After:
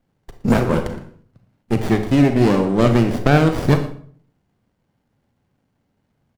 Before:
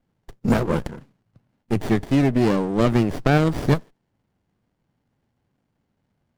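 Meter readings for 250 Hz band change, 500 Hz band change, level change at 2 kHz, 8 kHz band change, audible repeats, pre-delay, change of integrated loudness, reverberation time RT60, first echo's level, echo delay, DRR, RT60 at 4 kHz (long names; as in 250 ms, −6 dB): +4.0 dB, +4.0 dB, +4.0 dB, +3.5 dB, 1, 32 ms, +4.0 dB, 0.50 s, −17.0 dB, 116 ms, 6.5 dB, 0.40 s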